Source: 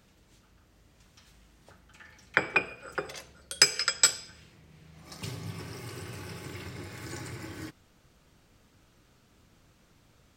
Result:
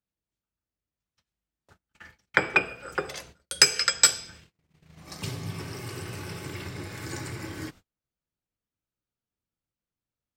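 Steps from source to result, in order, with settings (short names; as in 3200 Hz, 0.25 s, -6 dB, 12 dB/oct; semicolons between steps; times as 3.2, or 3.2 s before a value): gate -52 dBFS, range -36 dB; in parallel at -7 dB: soft clip -14 dBFS, distortion -11 dB; on the sum: gain +1 dB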